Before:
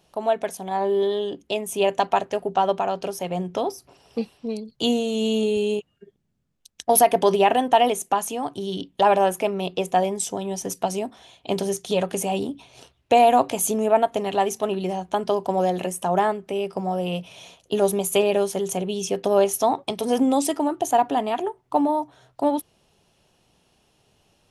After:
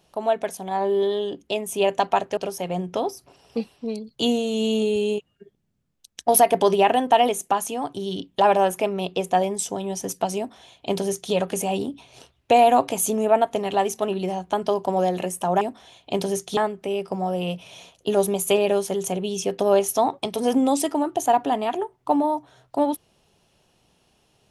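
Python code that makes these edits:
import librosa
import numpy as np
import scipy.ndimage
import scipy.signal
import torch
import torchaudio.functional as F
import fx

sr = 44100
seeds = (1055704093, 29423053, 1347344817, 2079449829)

y = fx.edit(x, sr, fx.cut(start_s=2.37, length_s=0.61),
    fx.duplicate(start_s=10.98, length_s=0.96, to_s=16.22), tone=tone)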